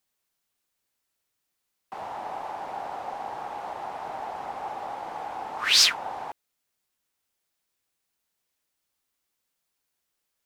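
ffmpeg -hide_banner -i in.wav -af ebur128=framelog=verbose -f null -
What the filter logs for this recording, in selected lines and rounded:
Integrated loudness:
  I:         -27.4 LUFS
  Threshold: -37.9 LUFS
Loudness range:
  LRA:        13.0 LU
  Threshold: -49.2 LUFS
  LRA low:   -39.1 LUFS
  LRA high:  -26.1 LUFS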